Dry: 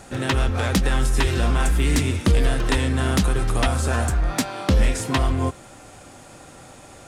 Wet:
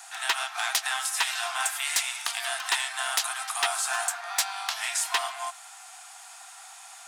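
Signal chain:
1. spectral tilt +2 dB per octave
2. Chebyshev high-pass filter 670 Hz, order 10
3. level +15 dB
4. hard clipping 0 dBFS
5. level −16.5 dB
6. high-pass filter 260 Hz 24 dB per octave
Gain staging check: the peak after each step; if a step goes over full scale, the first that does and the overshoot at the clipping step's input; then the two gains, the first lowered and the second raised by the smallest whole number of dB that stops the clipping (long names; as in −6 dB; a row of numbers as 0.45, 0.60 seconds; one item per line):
−7.0, −6.0, +9.0, 0.0, −16.5, −12.5 dBFS
step 3, 9.0 dB
step 3 +6 dB, step 5 −7.5 dB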